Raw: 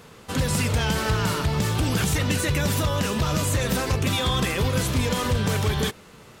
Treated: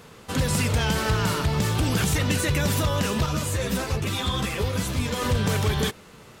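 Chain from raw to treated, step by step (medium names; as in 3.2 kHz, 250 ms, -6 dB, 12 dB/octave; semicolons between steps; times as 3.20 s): 3.26–5.22 s: three-phase chorus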